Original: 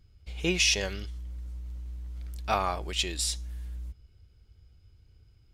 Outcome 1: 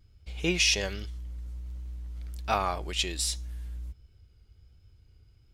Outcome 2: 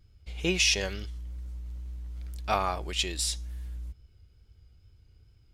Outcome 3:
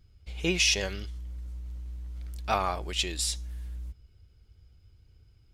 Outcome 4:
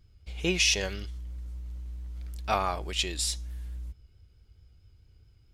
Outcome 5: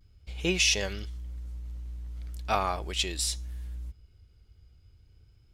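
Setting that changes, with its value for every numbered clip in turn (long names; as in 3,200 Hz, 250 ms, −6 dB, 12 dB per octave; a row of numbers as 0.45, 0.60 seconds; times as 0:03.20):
pitch vibrato, speed: 1.3, 2.3, 14, 4.6, 0.39 Hertz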